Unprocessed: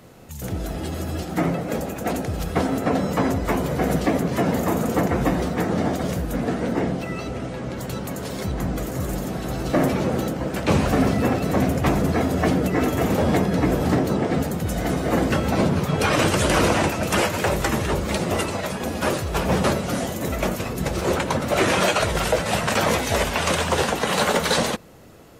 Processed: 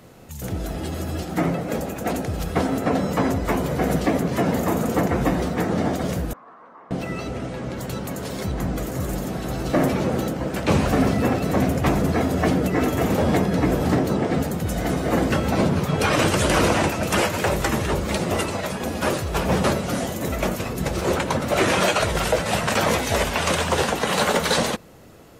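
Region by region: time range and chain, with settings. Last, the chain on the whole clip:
6.33–6.91 band-pass 1100 Hz, Q 8.3 + compressor 2.5:1, threshold -42 dBFS
whole clip: dry

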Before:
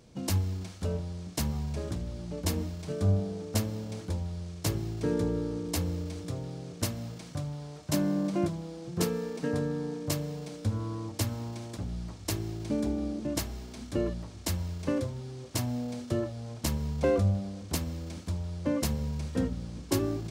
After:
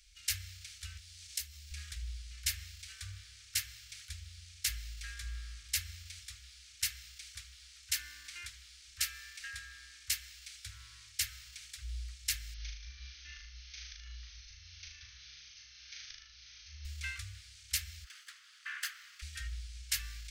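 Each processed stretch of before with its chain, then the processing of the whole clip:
0.97–1.71 compressor 16:1, threshold -38 dBFS + high shelf 2400 Hz +8.5 dB
12.54–16.85 auto swell 0.358 s + brick-wall FIR low-pass 6500 Hz + flutter echo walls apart 6.6 m, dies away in 0.81 s
18.04–19.22 minimum comb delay 0.64 ms + resonant high-pass 1200 Hz, resonance Q 2.7 + high shelf 3600 Hz -8 dB
whole clip: dynamic EQ 1700 Hz, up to +6 dB, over -54 dBFS, Q 1.7; inverse Chebyshev band-stop 130–890 Hz, stop band 50 dB; bell 1300 Hz +4 dB 0.66 oct; gain +2 dB

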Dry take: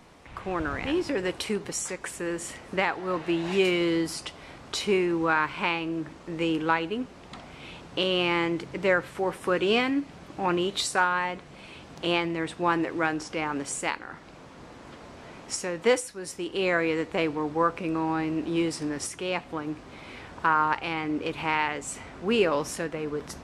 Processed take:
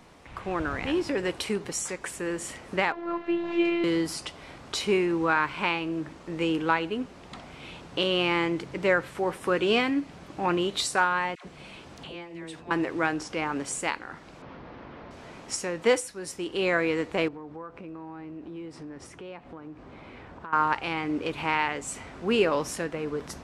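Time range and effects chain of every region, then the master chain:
2.92–3.84 LPF 2800 Hz + robotiser 343 Hz
11.35–12.71 dynamic EQ 1300 Hz, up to -5 dB, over -52 dBFS, Q 6.1 + compressor, threshold -36 dBFS + dispersion lows, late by 0.103 s, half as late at 760 Hz
14.42–15.11 delta modulation 32 kbps, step -54.5 dBFS + LPF 2700 Hz + fast leveller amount 100%
17.28–20.53 LPF 1400 Hz 6 dB/oct + compressor 3:1, threshold -41 dBFS
whole clip: dry

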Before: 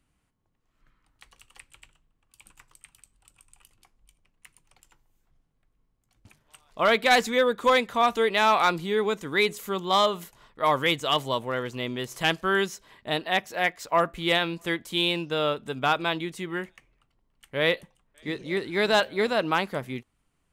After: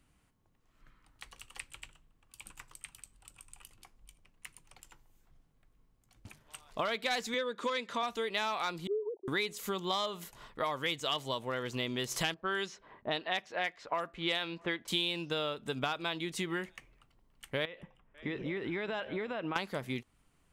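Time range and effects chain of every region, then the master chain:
7.34–8.03 notch 760 Hz, Q 7.4 + upward compressor, threshold -29 dBFS + BPF 180–7500 Hz
8.87–9.28 sine-wave speech + steep low-pass 900 Hz 96 dB/oct + gate -52 dBFS, range -28 dB
12.34–14.88 low shelf 180 Hz -8 dB + low-pass opened by the level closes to 790 Hz, open at -19 dBFS
17.65–19.56 compressor 16:1, threshold -33 dBFS + polynomial smoothing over 25 samples
whole clip: compressor 10:1, threshold -35 dBFS; dynamic EQ 4900 Hz, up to +6 dB, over -54 dBFS, Q 0.7; gain +3 dB

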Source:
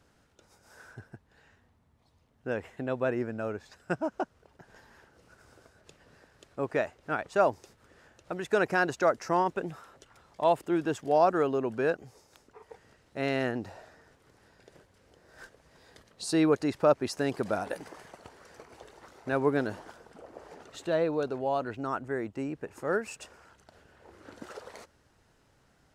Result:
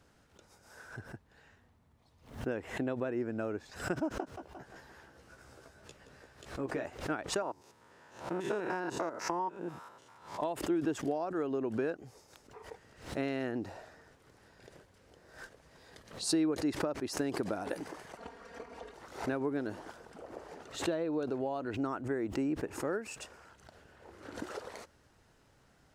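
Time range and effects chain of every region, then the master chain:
4.2–6.85 feedback echo 0.173 s, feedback 50%, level -13 dB + compressor 2:1, threshold -42 dBFS + doubler 15 ms -4 dB
7.42–10.41 stepped spectrum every 0.1 s + HPF 120 Hz + bell 950 Hz +11 dB 0.29 oct
18.17–18.94 LPF 2800 Hz 6 dB/oct + comb 4.3 ms, depth 97%
whole clip: compressor 10:1, threshold -33 dBFS; dynamic EQ 310 Hz, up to +7 dB, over -52 dBFS, Q 2.1; backwards sustainer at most 120 dB/s

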